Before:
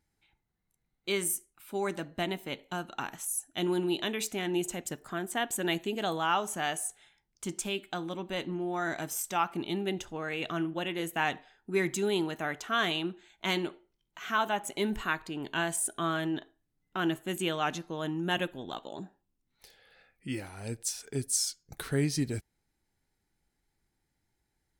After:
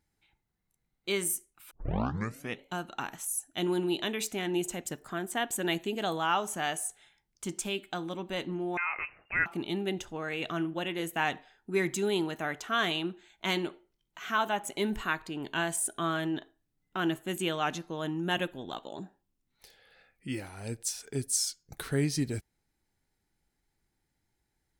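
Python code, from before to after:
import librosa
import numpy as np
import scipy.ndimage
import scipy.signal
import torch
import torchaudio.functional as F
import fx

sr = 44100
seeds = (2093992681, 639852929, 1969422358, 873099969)

y = fx.freq_invert(x, sr, carrier_hz=2800, at=(8.77, 9.46))
y = fx.edit(y, sr, fx.tape_start(start_s=1.71, length_s=0.93), tone=tone)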